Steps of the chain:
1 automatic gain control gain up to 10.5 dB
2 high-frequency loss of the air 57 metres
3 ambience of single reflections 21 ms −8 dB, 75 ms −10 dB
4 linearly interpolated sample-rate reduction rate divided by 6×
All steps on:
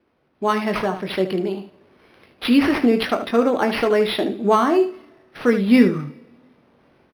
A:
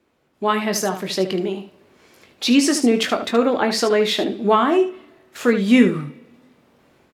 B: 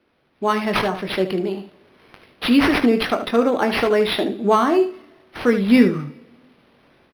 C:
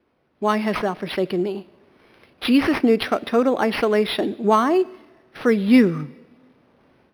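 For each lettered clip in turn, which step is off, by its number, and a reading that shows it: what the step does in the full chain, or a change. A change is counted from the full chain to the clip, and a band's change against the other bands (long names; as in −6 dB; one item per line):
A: 4, 8 kHz band +15.5 dB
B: 2, 4 kHz band +2.0 dB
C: 3, change in momentary loudness spread +1 LU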